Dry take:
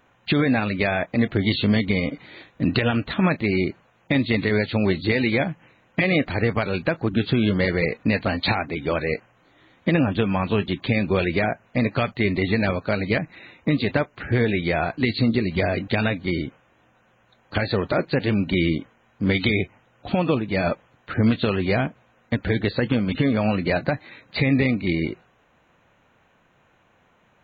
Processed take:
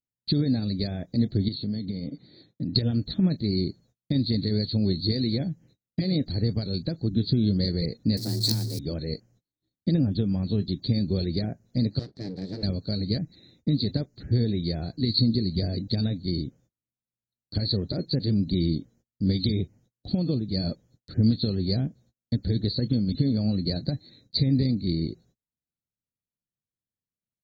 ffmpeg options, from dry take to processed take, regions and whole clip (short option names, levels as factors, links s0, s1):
-filter_complex "[0:a]asettb=1/sr,asplit=3[s0][s1][s2];[s0]atrim=end=1.484[s3];[s1]atrim=start=1.48:end=2.75,asetpts=PTS-STARTPTS,afade=t=in:d=0.004:c=qsin,afade=t=out:st=1.266:d=0.004:c=qsin,aemphasis=mode=production:type=75kf,acompressor=threshold=0.0891:ratio=10:attack=3.2:release=140:knee=1:detection=peak,highpass=110,lowpass=2100[s4];[s2]atrim=start=2.746[s5];[s3][s4]acrossfade=d=0.004:c1=hsin:c2=qsin[s6];[s6][s5]acrossfade=d=0.004:c1=qsin:c2=hsin,asettb=1/sr,asplit=3[s7][s8][s9];[s7]atrim=end=8.174[s10];[s8]atrim=start=8.17:end=8.79,asetpts=PTS-STARTPTS,afade=t=in:d=0.004:c=qsin,afade=t=out:st=0.616:d=0.004:c=qsin,aeval=exprs='val(0)+0.5*0.0501*sgn(val(0))':c=same,acrusher=bits=3:dc=4:mix=0:aa=0.000001,afreqshift=110[s11];[s9]atrim=start=8.786[s12];[s10][s11]acrossfade=d=0.004:c1=hsin:c2=qsin[s13];[s13][s12]acrossfade=d=0.004:c1=qsin:c2=hsin,asettb=1/sr,asplit=3[s14][s15][s16];[s14]atrim=end=11.994[s17];[s15]atrim=start=11.99:end=12.63,asetpts=PTS-STARTPTS,afade=t=in:d=0.004:c=qsin,afade=t=out:st=0.636:d=0.004:c=qsin,acompressor=mode=upward:threshold=0.0251:ratio=2.5:attack=3.2:release=140:knee=2.83:detection=peak,aeval=exprs='abs(val(0))':c=same,highpass=160,lowpass=2000[s18];[s16]atrim=start=12.626[s19];[s17][s18]acrossfade=d=0.004:c1=hsin:c2=qsin[s20];[s20][s19]acrossfade=d=0.004:c1=qsin:c2=hsin,agate=range=0.0251:threshold=0.00282:ratio=16:detection=peak,firequalizer=gain_entry='entry(140,0);entry(1000,-28);entry(1800,-23);entry(2800,-28);entry(4300,9);entry(6300,0)':delay=0.05:min_phase=1"